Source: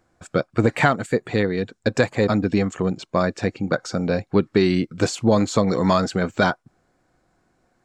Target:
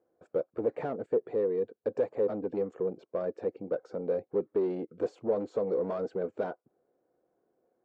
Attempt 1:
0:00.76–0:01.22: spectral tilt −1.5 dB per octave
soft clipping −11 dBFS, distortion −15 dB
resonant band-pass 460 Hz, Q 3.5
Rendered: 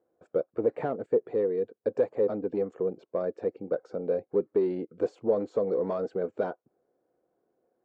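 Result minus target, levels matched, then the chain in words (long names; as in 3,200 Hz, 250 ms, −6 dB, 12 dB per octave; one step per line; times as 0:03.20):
soft clipping: distortion −6 dB
0:00.76–0:01.22: spectral tilt −1.5 dB per octave
soft clipping −17.5 dBFS, distortion −9 dB
resonant band-pass 460 Hz, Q 3.5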